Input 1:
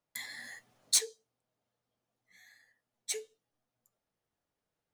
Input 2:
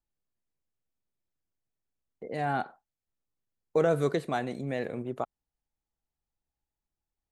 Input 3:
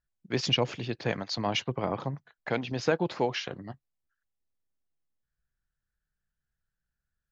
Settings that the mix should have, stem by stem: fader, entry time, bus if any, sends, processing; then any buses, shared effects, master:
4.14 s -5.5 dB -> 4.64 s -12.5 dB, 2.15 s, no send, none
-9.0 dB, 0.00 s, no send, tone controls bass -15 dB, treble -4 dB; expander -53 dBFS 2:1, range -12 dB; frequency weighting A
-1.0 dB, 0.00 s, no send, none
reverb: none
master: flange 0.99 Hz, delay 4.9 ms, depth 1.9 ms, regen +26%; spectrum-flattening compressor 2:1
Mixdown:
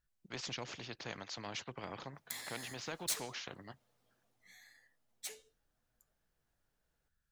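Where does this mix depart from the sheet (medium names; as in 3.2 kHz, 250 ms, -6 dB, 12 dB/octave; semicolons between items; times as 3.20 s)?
stem 2: muted; stem 3 -1.0 dB -> -11.5 dB; master: missing flange 0.99 Hz, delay 4.9 ms, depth 1.9 ms, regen +26%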